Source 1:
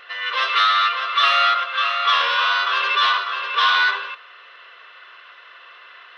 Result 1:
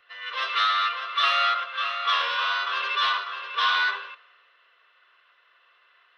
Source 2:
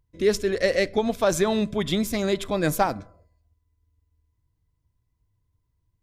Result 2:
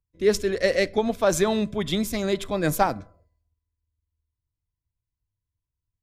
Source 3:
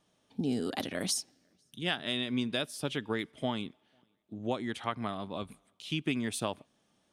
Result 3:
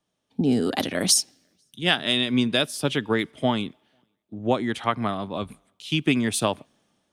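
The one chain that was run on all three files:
three-band expander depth 40%; match loudness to -24 LUFS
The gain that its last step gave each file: -6.5, 0.0, +10.0 dB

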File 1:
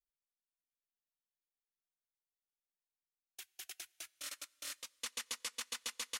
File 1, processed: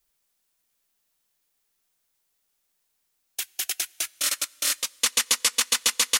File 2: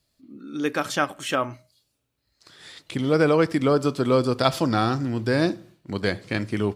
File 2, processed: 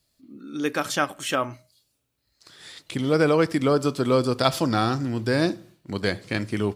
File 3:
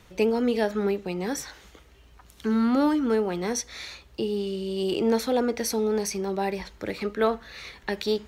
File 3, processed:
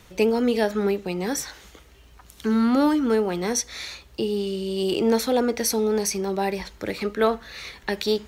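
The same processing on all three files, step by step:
high shelf 5200 Hz +5 dB; match loudness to -24 LUFS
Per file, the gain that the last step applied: +17.5, -0.5, +2.5 dB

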